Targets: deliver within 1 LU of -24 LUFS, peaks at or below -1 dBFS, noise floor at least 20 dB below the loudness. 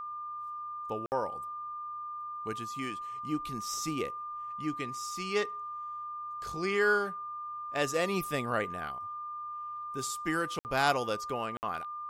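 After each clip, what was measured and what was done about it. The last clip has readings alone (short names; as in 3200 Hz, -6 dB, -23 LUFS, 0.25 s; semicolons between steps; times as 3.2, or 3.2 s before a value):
dropouts 3; longest dropout 59 ms; steady tone 1200 Hz; tone level -37 dBFS; loudness -34.0 LUFS; peak -13.5 dBFS; loudness target -24.0 LUFS
-> interpolate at 1.06/10.59/11.57, 59 ms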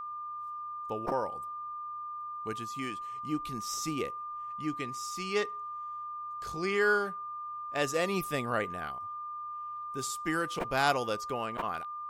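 dropouts 0; steady tone 1200 Hz; tone level -37 dBFS
-> notch 1200 Hz, Q 30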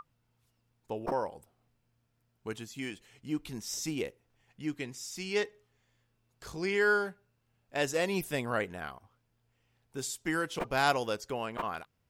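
steady tone none; loudness -33.5 LUFS; peak -14.0 dBFS; loudness target -24.0 LUFS
-> gain +9.5 dB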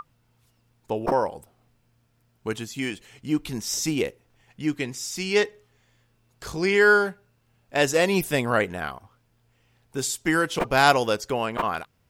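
loudness -24.5 LUFS; peak -4.5 dBFS; noise floor -67 dBFS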